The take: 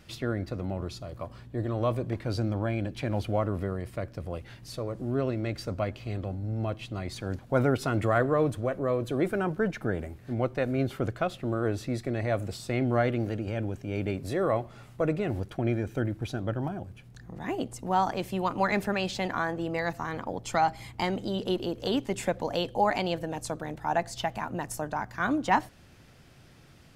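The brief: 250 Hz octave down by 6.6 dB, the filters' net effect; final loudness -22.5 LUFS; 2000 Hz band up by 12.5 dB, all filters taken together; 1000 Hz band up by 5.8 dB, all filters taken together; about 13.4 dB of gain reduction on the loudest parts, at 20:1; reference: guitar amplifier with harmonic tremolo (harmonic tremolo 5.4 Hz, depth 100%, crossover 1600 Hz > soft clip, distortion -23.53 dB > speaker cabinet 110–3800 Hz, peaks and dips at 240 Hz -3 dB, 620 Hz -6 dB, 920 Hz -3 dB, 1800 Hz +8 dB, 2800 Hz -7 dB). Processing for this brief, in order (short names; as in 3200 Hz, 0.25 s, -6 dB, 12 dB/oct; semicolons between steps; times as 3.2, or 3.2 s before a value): bell 250 Hz -8.5 dB; bell 1000 Hz +9 dB; bell 2000 Hz +7.5 dB; compressor 20:1, threshold -23 dBFS; harmonic tremolo 5.4 Hz, depth 100%, crossover 1600 Hz; soft clip -18 dBFS; speaker cabinet 110–3800 Hz, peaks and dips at 240 Hz -3 dB, 620 Hz -6 dB, 920 Hz -3 dB, 1800 Hz +8 dB, 2800 Hz -7 dB; gain +14.5 dB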